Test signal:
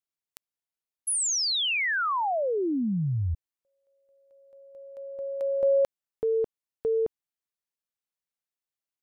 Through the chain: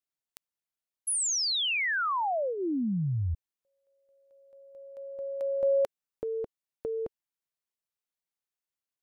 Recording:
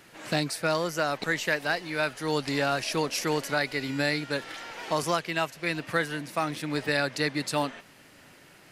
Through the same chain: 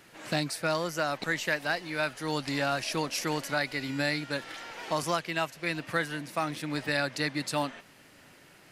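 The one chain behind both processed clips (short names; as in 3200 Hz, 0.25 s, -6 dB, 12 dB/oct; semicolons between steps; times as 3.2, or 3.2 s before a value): dynamic EQ 430 Hz, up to -7 dB, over -44 dBFS, Q 5.9; gain -2 dB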